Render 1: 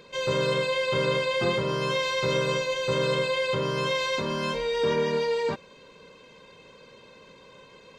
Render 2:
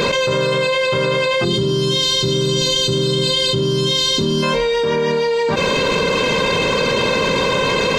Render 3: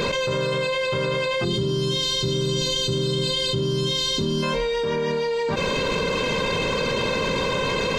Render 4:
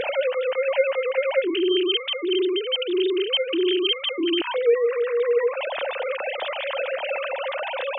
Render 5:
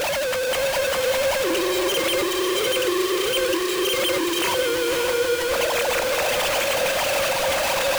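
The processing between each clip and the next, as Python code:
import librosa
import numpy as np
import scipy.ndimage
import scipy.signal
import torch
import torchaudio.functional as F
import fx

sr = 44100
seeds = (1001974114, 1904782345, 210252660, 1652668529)

y1 = fx.spec_box(x, sr, start_s=1.45, length_s=2.98, low_hz=440.0, high_hz=2700.0, gain_db=-16)
y1 = fx.env_flatten(y1, sr, amount_pct=100)
y1 = F.gain(torch.from_numpy(y1), 5.0).numpy()
y2 = fx.low_shelf(y1, sr, hz=89.0, db=8.0)
y2 = F.gain(torch.from_numpy(y2), -7.0).numpy()
y3 = fx.sine_speech(y2, sr)
y4 = np.sign(y3) * np.sqrt(np.mean(np.square(y3)))
y4 = fx.echo_diffused(y4, sr, ms=554, feedback_pct=49, wet_db=-4.5)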